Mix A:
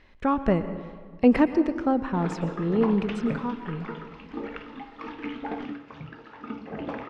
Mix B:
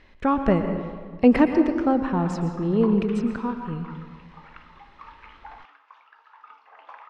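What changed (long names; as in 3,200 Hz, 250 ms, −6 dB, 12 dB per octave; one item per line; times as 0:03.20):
speech: send +7.0 dB
background: add four-pole ladder high-pass 860 Hz, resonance 55%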